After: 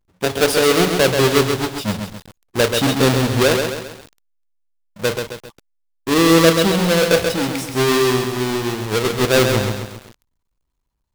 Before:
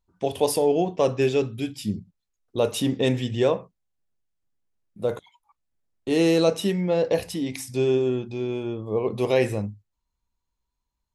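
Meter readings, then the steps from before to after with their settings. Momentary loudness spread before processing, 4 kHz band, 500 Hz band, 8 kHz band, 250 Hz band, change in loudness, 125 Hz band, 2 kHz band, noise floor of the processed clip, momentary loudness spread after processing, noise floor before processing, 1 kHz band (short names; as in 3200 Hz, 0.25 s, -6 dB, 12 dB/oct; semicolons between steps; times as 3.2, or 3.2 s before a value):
10 LU, +14.0 dB, +5.5 dB, +13.0 dB, +7.0 dB, +7.5 dB, +8.0 dB, +15.0 dB, -73 dBFS, 14 LU, -81 dBFS, +11.0 dB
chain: half-waves squared off; dynamic EQ 3900 Hz, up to +4 dB, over -38 dBFS, Q 1.2; lo-fi delay 0.133 s, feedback 55%, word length 6-bit, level -5 dB; gain +1.5 dB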